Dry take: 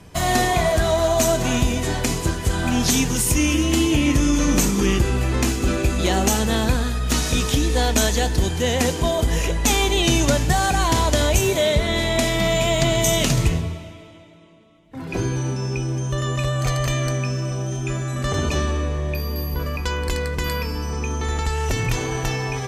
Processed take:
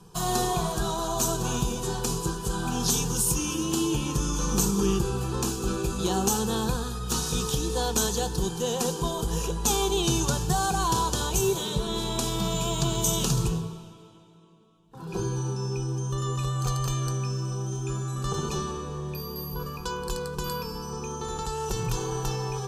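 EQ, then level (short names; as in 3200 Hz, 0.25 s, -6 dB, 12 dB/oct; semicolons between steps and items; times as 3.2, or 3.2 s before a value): fixed phaser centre 410 Hz, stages 8; -3.0 dB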